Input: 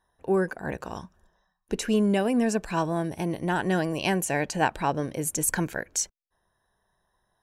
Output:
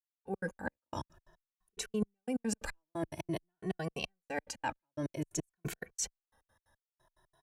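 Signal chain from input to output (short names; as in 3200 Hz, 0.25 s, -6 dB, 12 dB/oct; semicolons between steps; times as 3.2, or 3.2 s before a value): step gate "...x.x.x" 178 bpm -60 dB; reverse; compressor 6:1, threshold -37 dBFS, peak gain reduction 17 dB; reverse; endless flanger 2.2 ms +0.51 Hz; gain +6 dB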